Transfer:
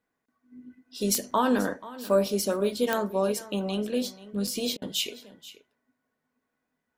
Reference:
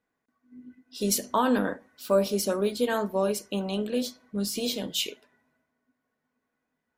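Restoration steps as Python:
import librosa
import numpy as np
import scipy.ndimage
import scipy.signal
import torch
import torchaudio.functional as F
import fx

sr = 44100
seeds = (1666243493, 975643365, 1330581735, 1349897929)

y = fx.fix_declick_ar(x, sr, threshold=10.0)
y = fx.fix_interpolate(y, sr, at_s=(1.31, 4.47), length_ms=4.8)
y = fx.fix_interpolate(y, sr, at_s=(4.77,), length_ms=48.0)
y = fx.fix_echo_inverse(y, sr, delay_ms=484, level_db=-17.5)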